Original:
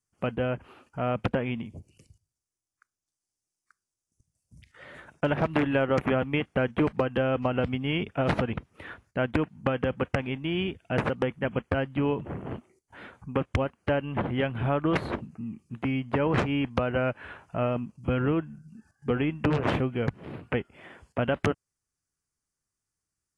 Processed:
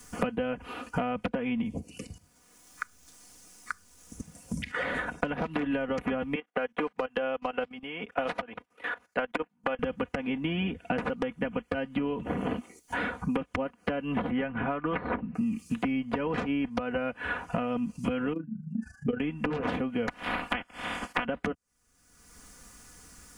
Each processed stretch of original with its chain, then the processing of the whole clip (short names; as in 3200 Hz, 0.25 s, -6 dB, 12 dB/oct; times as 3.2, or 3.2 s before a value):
6.35–9.79 HPF 470 Hz + level quantiser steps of 15 dB + upward expander, over -52 dBFS
14.3–15.35 LPF 2600 Hz 24 dB/oct + dynamic EQ 1300 Hz, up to +4 dB, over -42 dBFS, Q 1.1
18.33–19.2 spectral contrast raised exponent 1.7 + AM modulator 26 Hz, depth 60% + doubler 31 ms -13 dB
20.07–21.24 spectral limiter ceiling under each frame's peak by 26 dB + bell 450 Hz -8.5 dB 0.28 oct
whole clip: compressor 6:1, threshold -34 dBFS; comb 4.1 ms, depth 72%; three-band squash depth 100%; gain +4.5 dB